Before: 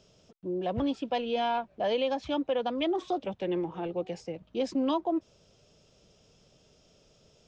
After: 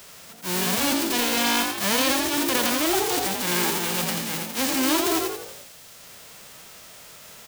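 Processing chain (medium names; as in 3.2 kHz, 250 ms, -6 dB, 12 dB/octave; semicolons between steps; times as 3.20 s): formants flattened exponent 0.1; de-hum 55.8 Hz, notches 15; transient shaper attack -6 dB, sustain +9 dB; frequency-shifting echo 85 ms, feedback 41%, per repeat +53 Hz, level -4 dB; three bands compressed up and down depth 40%; trim +5.5 dB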